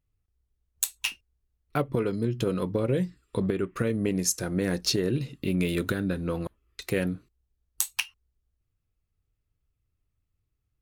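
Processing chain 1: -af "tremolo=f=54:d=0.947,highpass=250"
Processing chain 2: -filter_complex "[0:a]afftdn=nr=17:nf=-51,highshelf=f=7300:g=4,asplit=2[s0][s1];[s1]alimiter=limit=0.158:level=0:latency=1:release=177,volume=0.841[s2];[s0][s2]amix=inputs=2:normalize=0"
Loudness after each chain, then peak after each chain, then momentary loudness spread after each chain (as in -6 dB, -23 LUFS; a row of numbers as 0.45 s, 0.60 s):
-35.0 LUFS, -24.0 LUFS; -11.0 dBFS, -3.5 dBFS; 9 LU, 7 LU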